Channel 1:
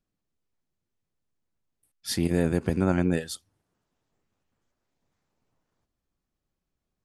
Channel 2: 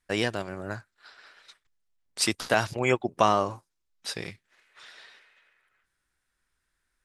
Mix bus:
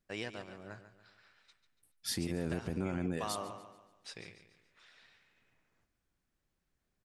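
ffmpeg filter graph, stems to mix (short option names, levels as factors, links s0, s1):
-filter_complex "[0:a]volume=0.944,asplit=2[s0][s1];[s1]volume=0.075[s2];[1:a]lowpass=f=9400:w=0.5412,lowpass=f=9400:w=1.3066,equalizer=f=2400:w=3.1:g=3.5,volume=0.2,asplit=2[s3][s4];[s4]volume=0.266[s5];[s2][s5]amix=inputs=2:normalize=0,aecho=0:1:143|286|429|572|715|858:1|0.42|0.176|0.0741|0.0311|0.0131[s6];[s0][s3][s6]amix=inputs=3:normalize=0,alimiter=level_in=1.12:limit=0.0631:level=0:latency=1:release=158,volume=0.891"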